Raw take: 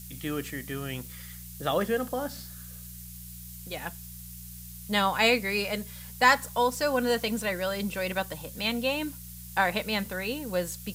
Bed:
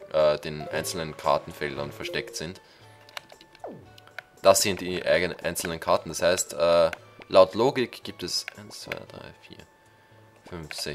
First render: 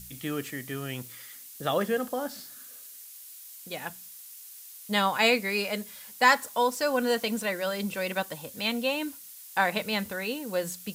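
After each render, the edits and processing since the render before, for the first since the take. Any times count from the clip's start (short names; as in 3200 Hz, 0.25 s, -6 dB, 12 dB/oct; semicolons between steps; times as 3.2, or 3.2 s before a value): de-hum 60 Hz, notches 3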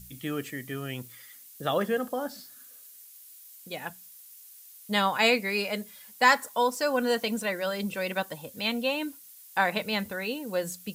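denoiser 6 dB, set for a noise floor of -47 dBFS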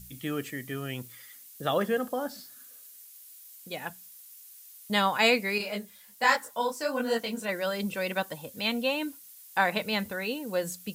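4.22–4.9 steep high-pass 720 Hz; 5.58–7.49 detuned doubles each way 46 cents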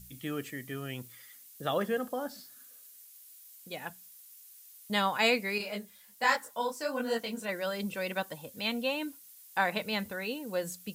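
gain -3.5 dB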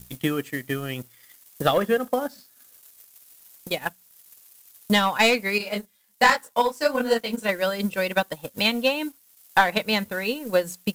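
sample leveller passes 2; transient shaper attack +8 dB, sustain -5 dB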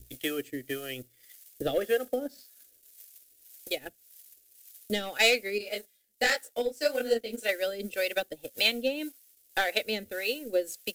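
fixed phaser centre 420 Hz, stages 4; harmonic tremolo 1.8 Hz, depth 70%, crossover 470 Hz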